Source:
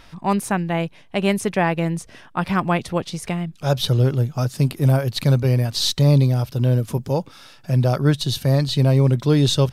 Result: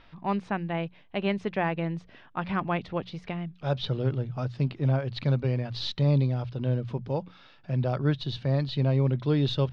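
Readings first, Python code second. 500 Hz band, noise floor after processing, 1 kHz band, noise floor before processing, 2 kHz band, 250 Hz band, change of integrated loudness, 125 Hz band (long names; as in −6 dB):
−8.0 dB, −55 dBFS, −8.0 dB, −48 dBFS, −8.0 dB, −8.5 dB, −8.5 dB, −9.0 dB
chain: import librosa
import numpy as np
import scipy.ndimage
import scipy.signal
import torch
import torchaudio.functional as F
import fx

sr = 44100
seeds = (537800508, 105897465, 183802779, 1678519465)

y = scipy.signal.sosfilt(scipy.signal.butter(4, 3900.0, 'lowpass', fs=sr, output='sos'), x)
y = fx.hum_notches(y, sr, base_hz=60, count=3)
y = y * librosa.db_to_amplitude(-8.0)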